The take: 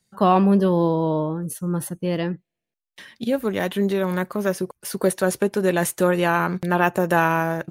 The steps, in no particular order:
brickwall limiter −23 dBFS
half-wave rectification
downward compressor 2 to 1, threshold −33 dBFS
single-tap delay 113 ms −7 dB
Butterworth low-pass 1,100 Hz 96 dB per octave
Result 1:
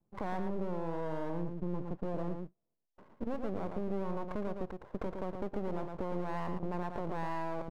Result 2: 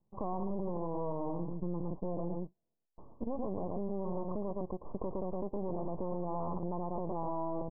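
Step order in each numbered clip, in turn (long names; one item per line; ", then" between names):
Butterworth low-pass, then half-wave rectification, then brickwall limiter, then single-tap delay, then downward compressor
single-tap delay, then half-wave rectification, then Butterworth low-pass, then brickwall limiter, then downward compressor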